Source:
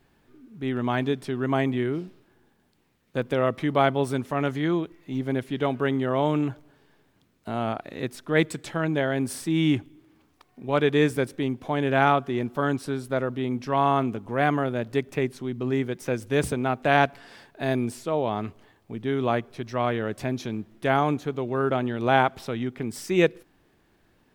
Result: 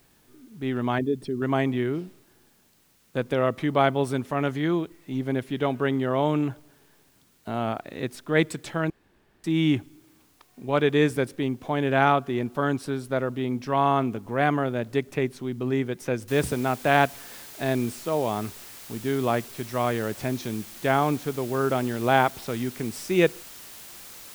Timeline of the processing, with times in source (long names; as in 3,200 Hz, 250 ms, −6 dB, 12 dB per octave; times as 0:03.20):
0:00.98–0:01.42: spectral envelope exaggerated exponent 2
0:08.90–0:09.44: fill with room tone
0:16.28: noise floor change −64 dB −44 dB